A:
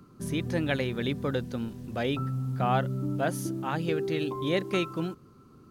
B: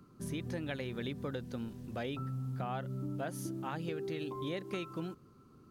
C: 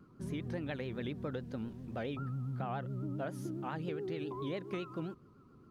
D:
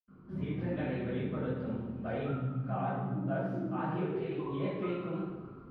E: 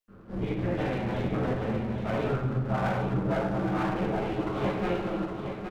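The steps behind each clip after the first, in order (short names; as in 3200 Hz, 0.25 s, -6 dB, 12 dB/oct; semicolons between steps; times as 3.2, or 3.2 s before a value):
compressor, threshold -29 dBFS, peak gain reduction 8 dB; gain -5.5 dB
high shelf 4400 Hz -12 dB; vibrato 7.3 Hz 98 cents
reverse; upward compressor, threshold -46 dBFS; reverse; air absorption 360 m; reverb RT60 1.2 s, pre-delay 76 ms; gain -3 dB
minimum comb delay 9.3 ms; on a send: echo 0.816 s -7 dB; on the sum: gain +7 dB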